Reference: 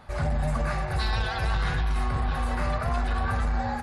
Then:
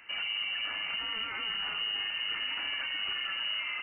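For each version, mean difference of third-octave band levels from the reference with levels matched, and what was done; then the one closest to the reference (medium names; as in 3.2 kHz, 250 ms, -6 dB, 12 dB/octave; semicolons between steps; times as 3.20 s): 17.5 dB: high-pass 54 Hz 12 dB/octave; peak limiter -25 dBFS, peak gain reduction 8.5 dB; frequency inversion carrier 2.9 kHz; trim -3 dB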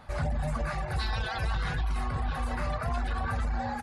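1.5 dB: band-stop 390 Hz, Q 12; in parallel at -3 dB: peak limiter -23.5 dBFS, peak gain reduction 7.5 dB; on the sum: reverb removal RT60 0.58 s; trim -5.5 dB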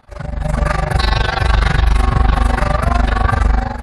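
3.0 dB: level rider gain up to 15 dB; AM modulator 24 Hz, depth 80%; echo whose repeats swap between lows and highs 379 ms, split 800 Hz, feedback 50%, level -12 dB; trim +2.5 dB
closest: second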